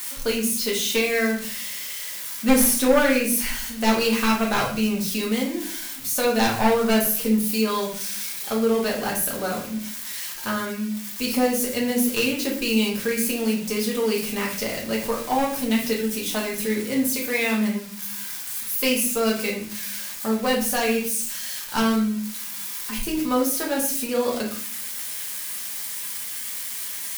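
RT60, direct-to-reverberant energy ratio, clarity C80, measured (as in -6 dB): 0.50 s, -3.5 dB, 10.5 dB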